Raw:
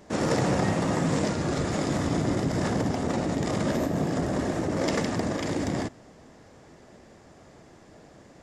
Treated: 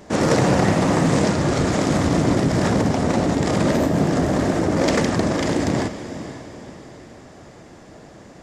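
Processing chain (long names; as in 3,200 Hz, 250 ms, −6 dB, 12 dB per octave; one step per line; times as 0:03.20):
feedback delay with all-pass diffusion 494 ms, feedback 43%, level −12 dB
highs frequency-modulated by the lows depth 0.23 ms
level +7.5 dB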